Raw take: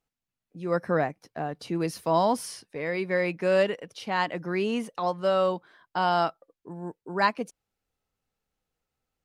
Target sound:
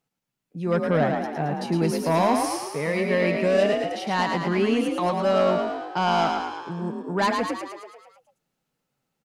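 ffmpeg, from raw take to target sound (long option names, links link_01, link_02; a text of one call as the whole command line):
ffmpeg -i in.wav -filter_complex "[0:a]aeval=exprs='0.316*(cos(1*acos(clip(val(0)/0.316,-1,1)))-cos(1*PI/2))+0.0708*(cos(5*acos(clip(val(0)/0.316,-1,1)))-cos(5*PI/2))+0.00562*(cos(8*acos(clip(val(0)/0.316,-1,1)))-cos(8*PI/2))':channel_layout=same,lowshelf=frequency=100:width_type=q:width=3:gain=-10.5,asplit=9[link_01][link_02][link_03][link_04][link_05][link_06][link_07][link_08][link_09];[link_02]adelay=110,afreqshift=43,volume=-4.5dB[link_10];[link_03]adelay=220,afreqshift=86,volume=-9.1dB[link_11];[link_04]adelay=330,afreqshift=129,volume=-13.7dB[link_12];[link_05]adelay=440,afreqshift=172,volume=-18.2dB[link_13];[link_06]adelay=550,afreqshift=215,volume=-22.8dB[link_14];[link_07]adelay=660,afreqshift=258,volume=-27.4dB[link_15];[link_08]adelay=770,afreqshift=301,volume=-32dB[link_16];[link_09]adelay=880,afreqshift=344,volume=-36.6dB[link_17];[link_01][link_10][link_11][link_12][link_13][link_14][link_15][link_16][link_17]amix=inputs=9:normalize=0,volume=-3dB" out.wav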